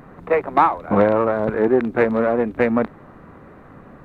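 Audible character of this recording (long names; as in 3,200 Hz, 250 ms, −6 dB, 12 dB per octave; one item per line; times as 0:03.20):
background noise floor −44 dBFS
spectral slope −2.5 dB per octave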